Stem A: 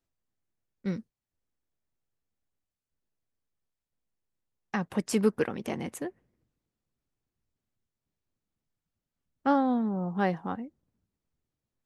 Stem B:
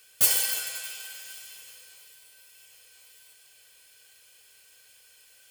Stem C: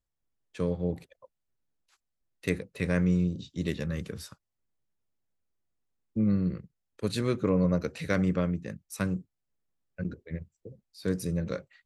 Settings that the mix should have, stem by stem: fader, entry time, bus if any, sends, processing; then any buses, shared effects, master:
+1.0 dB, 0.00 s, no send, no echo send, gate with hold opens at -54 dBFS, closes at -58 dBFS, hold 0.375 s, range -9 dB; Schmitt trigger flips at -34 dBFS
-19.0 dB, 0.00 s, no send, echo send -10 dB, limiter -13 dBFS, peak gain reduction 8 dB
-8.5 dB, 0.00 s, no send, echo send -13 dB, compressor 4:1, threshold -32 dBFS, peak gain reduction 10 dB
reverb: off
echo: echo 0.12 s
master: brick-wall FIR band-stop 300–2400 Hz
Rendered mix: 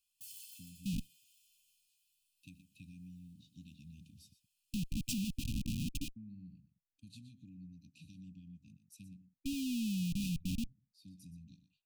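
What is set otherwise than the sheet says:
stem B -19.0 dB -> -26.0 dB; stem C -8.5 dB -> -17.0 dB

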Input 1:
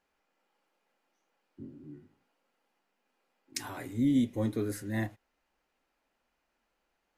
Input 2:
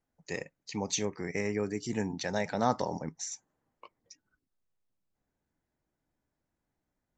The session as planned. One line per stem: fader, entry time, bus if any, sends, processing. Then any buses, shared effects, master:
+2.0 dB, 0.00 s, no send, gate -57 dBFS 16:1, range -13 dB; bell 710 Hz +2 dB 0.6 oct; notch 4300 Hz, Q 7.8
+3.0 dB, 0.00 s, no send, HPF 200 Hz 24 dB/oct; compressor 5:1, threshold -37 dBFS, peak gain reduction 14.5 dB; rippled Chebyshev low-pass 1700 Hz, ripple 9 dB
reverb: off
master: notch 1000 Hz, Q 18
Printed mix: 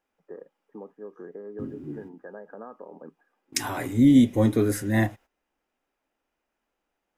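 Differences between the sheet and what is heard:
stem 1 +2.0 dB -> +10.0 dB; master: missing notch 1000 Hz, Q 18

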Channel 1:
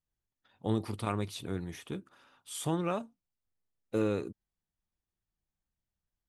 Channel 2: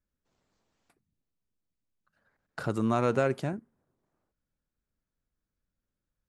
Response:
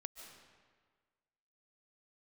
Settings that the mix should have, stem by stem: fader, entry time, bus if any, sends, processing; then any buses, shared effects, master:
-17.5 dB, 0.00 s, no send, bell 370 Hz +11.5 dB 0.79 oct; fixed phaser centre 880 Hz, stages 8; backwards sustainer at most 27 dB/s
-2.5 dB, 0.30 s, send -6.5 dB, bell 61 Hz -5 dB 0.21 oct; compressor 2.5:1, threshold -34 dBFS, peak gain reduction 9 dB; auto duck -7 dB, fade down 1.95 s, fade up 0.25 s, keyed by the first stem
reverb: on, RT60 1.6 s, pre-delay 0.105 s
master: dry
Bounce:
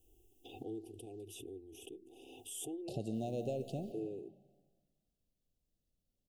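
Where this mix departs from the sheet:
stem 2: send -6.5 dB -> -0.5 dB; master: extra Chebyshev band-stop 770–2700 Hz, order 5

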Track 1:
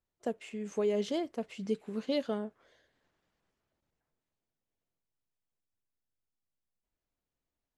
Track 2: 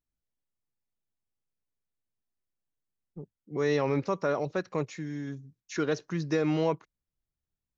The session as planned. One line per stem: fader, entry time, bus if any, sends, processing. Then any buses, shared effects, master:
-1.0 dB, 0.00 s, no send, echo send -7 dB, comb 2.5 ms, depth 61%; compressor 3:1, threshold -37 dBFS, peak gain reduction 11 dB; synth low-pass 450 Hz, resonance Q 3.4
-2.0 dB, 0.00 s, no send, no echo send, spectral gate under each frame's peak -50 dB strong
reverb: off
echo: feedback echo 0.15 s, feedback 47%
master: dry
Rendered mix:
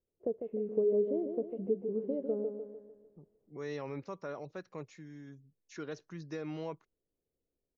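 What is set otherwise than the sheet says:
stem 1: missing comb 2.5 ms, depth 61%; stem 2 -2.0 dB -> -13.0 dB

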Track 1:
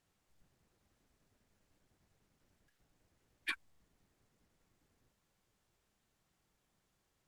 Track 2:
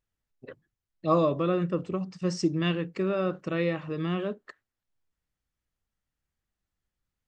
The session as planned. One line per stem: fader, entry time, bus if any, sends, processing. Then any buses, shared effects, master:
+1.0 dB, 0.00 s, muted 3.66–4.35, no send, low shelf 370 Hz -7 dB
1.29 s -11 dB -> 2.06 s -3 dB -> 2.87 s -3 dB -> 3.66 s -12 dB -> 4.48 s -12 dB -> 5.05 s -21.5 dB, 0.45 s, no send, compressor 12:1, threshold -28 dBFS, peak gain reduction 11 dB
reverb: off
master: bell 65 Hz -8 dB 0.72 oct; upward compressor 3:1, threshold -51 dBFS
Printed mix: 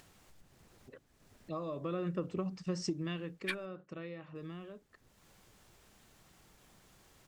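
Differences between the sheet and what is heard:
stem 1: missing low shelf 370 Hz -7 dB; master: missing bell 65 Hz -8 dB 0.72 oct

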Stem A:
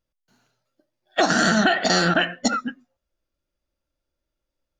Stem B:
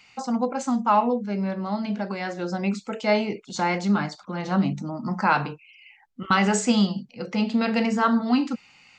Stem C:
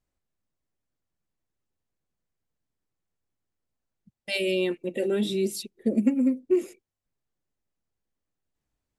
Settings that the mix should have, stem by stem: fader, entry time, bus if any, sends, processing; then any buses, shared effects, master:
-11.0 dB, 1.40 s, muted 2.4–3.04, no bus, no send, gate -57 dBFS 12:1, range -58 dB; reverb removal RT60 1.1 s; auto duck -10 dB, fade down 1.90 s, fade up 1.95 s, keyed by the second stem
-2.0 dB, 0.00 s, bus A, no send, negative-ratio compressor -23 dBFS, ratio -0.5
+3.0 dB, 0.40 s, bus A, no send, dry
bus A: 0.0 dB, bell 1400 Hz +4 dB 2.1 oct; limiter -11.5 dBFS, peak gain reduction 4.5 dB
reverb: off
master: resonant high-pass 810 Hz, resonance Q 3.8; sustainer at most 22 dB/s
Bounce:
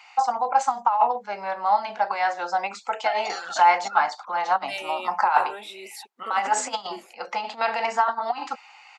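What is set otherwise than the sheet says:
stem A -11.0 dB -> -4.0 dB; stem C +3.0 dB -> -6.5 dB; master: missing sustainer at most 22 dB/s

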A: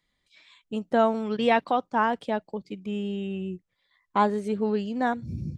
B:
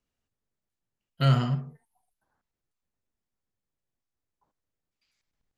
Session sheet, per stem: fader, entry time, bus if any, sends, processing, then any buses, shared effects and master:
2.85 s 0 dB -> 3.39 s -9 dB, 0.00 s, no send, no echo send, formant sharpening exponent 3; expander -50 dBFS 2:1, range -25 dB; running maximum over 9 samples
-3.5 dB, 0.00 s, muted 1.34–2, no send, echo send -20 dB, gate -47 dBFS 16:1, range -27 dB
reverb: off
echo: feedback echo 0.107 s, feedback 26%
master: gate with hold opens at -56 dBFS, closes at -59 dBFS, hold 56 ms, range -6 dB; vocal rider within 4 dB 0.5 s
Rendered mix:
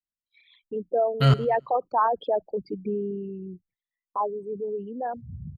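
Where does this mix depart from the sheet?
stem A: missing running maximum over 9 samples; stem B -3.5 dB -> +7.0 dB

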